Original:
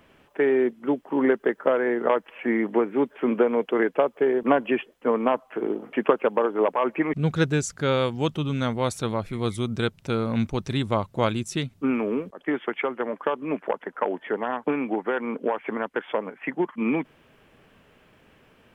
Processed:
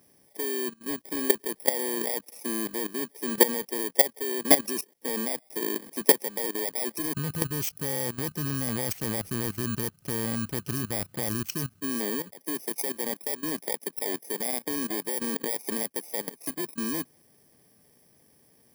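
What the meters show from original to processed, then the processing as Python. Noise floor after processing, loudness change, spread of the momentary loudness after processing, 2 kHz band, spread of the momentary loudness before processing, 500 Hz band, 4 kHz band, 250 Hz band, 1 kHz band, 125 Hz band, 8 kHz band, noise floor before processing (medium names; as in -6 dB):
-62 dBFS, -2.5 dB, 10 LU, -4.5 dB, 7 LU, -9.0 dB, +2.0 dB, -7.0 dB, -9.0 dB, -6.0 dB, +11.5 dB, -59 dBFS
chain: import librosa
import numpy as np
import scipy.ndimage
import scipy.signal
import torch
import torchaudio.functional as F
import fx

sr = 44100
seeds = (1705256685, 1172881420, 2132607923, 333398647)

y = fx.bit_reversed(x, sr, seeds[0], block=32)
y = scipy.signal.sosfilt(scipy.signal.butter(2, 84.0, 'highpass', fs=sr, output='sos'), y)
y = fx.high_shelf(y, sr, hz=6200.0, db=3.5)
y = fx.notch(y, sr, hz=980.0, q=10.0)
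y = fx.level_steps(y, sr, step_db=16)
y = F.gain(torch.from_numpy(y), 2.5).numpy()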